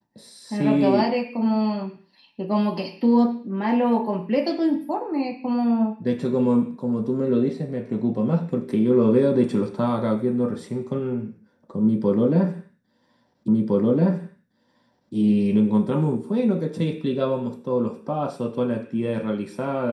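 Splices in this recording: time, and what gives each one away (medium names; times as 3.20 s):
13.48 s: repeat of the last 1.66 s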